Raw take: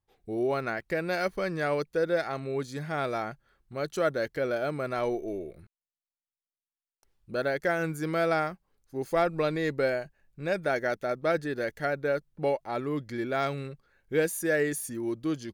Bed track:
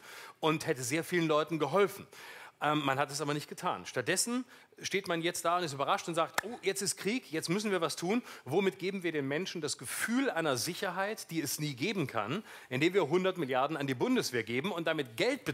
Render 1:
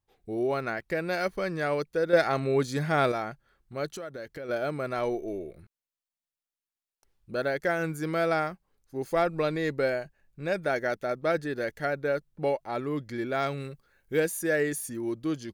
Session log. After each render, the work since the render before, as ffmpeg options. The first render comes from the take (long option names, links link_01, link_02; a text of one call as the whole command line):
ffmpeg -i in.wav -filter_complex "[0:a]asettb=1/sr,asplit=3[link_01][link_02][link_03];[link_01]atrim=end=2.134[link_04];[link_02]atrim=start=2.13:end=3.12,asetpts=PTS-STARTPTS,afade=type=in:duration=0.004:curve=qsin,afade=type=out:start_time=0.986:duration=0.004:curve=qsin,acontrast=66[link_05];[link_03]atrim=start=3.116[link_06];[link_04][link_05]acrossfade=duration=0.004:curve1=hsin:curve2=qsin[link_07];[link_07][link_06]acrossfade=duration=0.004:curve1=qsin:curve2=hsin,asplit=3[link_08][link_09][link_10];[link_08]afade=type=out:start_time=3.92:duration=0.02[link_11];[link_09]acompressor=threshold=-36dB:ratio=5:attack=3.2:release=140:knee=1:detection=peak,afade=type=in:start_time=3.92:duration=0.02,afade=type=out:start_time=4.48:duration=0.02[link_12];[link_10]afade=type=in:start_time=4.48:duration=0.02[link_13];[link_11][link_12][link_13]amix=inputs=3:normalize=0,asettb=1/sr,asplit=3[link_14][link_15][link_16];[link_14]atrim=end=13.604[link_17];[link_15]atrim=start=13.6:end=14.2,asetpts=PTS-STARTPTS,afade=type=in:duration=0.004:curve=qsin,afade=type=out:start_time=0.596:duration=0.004:curve=qsin,highshelf=frequency=7200:gain=10[link_18];[link_16]atrim=start=14.196[link_19];[link_17][link_18]acrossfade=duration=0.004:curve1=hsin:curve2=qsin[link_20];[link_20][link_19]acrossfade=duration=0.004:curve1=qsin:curve2=hsin" out.wav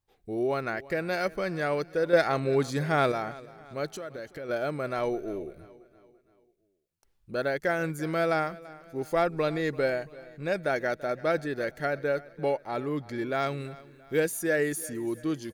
ffmpeg -i in.wav -af "aecho=1:1:337|674|1011|1348:0.1|0.047|0.0221|0.0104" out.wav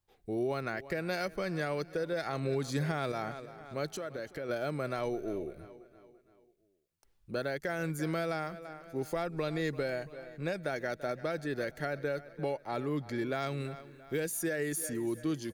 ffmpeg -i in.wav -filter_complex "[0:a]alimiter=limit=-20.5dB:level=0:latency=1:release=195,acrossover=split=220|3000[link_01][link_02][link_03];[link_02]acompressor=threshold=-35dB:ratio=2[link_04];[link_01][link_04][link_03]amix=inputs=3:normalize=0" out.wav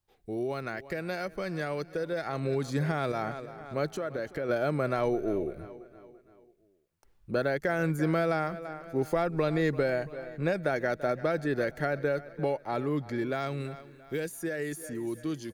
ffmpeg -i in.wav -filter_complex "[0:a]acrossover=split=2200[link_01][link_02];[link_01]dynaudnorm=framelen=290:gausssize=21:maxgain=6.5dB[link_03];[link_02]alimiter=level_in=10.5dB:limit=-24dB:level=0:latency=1:release=238,volume=-10.5dB[link_04];[link_03][link_04]amix=inputs=2:normalize=0" out.wav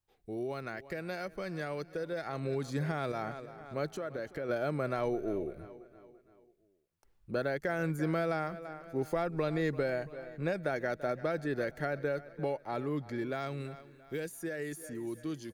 ffmpeg -i in.wav -af "volume=-4.5dB" out.wav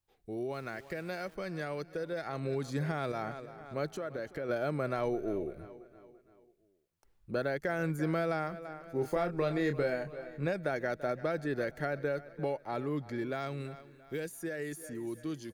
ffmpeg -i in.wav -filter_complex "[0:a]asettb=1/sr,asplit=3[link_01][link_02][link_03];[link_01]atrim=end=0.544[link_04];[link_02]atrim=start=0.54:end=1.35,asetpts=PTS-STARTPTS,afade=type=in:duration=0.004:curve=qsin,afade=type=out:start_time=0.806:duration=0.004:curve=qsin,aeval=exprs='val(0)*gte(abs(val(0)),0.00188)':channel_layout=same[link_05];[link_03]atrim=start=1.346[link_06];[link_04][link_05]acrossfade=duration=0.004:curve1=hsin:curve2=qsin[link_07];[link_07][link_06]acrossfade=duration=0.004:curve1=qsin:curve2=hsin,asettb=1/sr,asplit=3[link_08][link_09][link_10];[link_08]atrim=end=8.924[link_11];[link_09]atrim=start=8.92:end=10.47,asetpts=PTS-STARTPTS,afade=type=in:duration=0.004:curve=qsin,afade=type=out:start_time=1.546:duration=0.004:curve=qsin,asplit=2[link_12][link_13];[link_13]adelay=28,volume=-7dB[link_14];[link_12][link_14]amix=inputs=2:normalize=0,atrim=end_sample=68355[link_15];[link_10]atrim=start=10.466[link_16];[link_11][link_15]acrossfade=duration=0.004:curve1=hsin:curve2=qsin[link_17];[link_17][link_16]acrossfade=duration=0.004:curve1=qsin:curve2=hsin" out.wav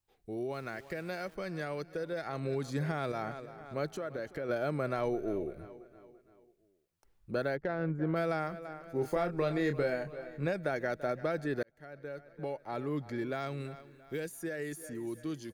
ffmpeg -i in.wav -filter_complex "[0:a]asplit=3[link_01][link_02][link_03];[link_01]afade=type=out:start_time=7.55:duration=0.02[link_04];[link_02]adynamicsmooth=sensitivity=1:basefreq=1200,afade=type=in:start_time=7.55:duration=0.02,afade=type=out:start_time=8.15:duration=0.02[link_05];[link_03]afade=type=in:start_time=8.15:duration=0.02[link_06];[link_04][link_05][link_06]amix=inputs=3:normalize=0,asplit=2[link_07][link_08];[link_07]atrim=end=11.63,asetpts=PTS-STARTPTS,afade=type=out:start_time=11.626:duration=0.004:curve=hsin[link_09];[link_08]atrim=start=11.63,asetpts=PTS-STARTPTS,afade=type=in:duration=1.35[link_10];[link_09][link_10]concat=n=2:v=0:a=1" out.wav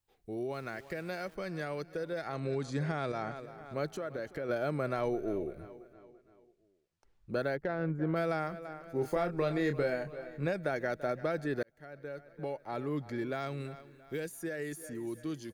ffmpeg -i in.wav -filter_complex "[0:a]asettb=1/sr,asplit=3[link_01][link_02][link_03];[link_01]atrim=end=2.354[link_04];[link_02]atrim=start=2.35:end=3.36,asetpts=PTS-STARTPTS,afade=type=in:duration=0.004:curve=qsin,afade=type=out:start_time=1.006:duration=0.004:curve=qsin,lowpass=frequency=9000:width=0.5412,lowpass=frequency=9000:width=1.3066[link_05];[link_03]atrim=start=3.356[link_06];[link_04][link_05]acrossfade=duration=0.004:curve1=hsin:curve2=qsin[link_07];[link_07][link_06]acrossfade=duration=0.004:curve1=qsin:curve2=hsin,asettb=1/sr,asplit=3[link_08][link_09][link_10];[link_08]atrim=end=5.934[link_11];[link_09]atrim=start=5.93:end=7.31,asetpts=PTS-STARTPTS,afade=type=in:duration=0.004:curve=qsin,afade=type=out:start_time=1.376:duration=0.004:curve=qsin,lowpass=6800[link_12];[link_10]atrim=start=7.306[link_13];[link_11][link_12]acrossfade=duration=0.004:curve1=hsin:curve2=qsin[link_14];[link_14][link_13]acrossfade=duration=0.004:curve1=qsin:curve2=hsin" out.wav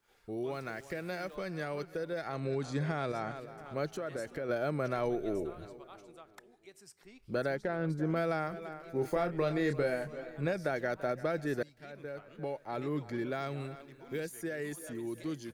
ffmpeg -i in.wav -i bed.wav -filter_complex "[1:a]volume=-23dB[link_01];[0:a][link_01]amix=inputs=2:normalize=0" out.wav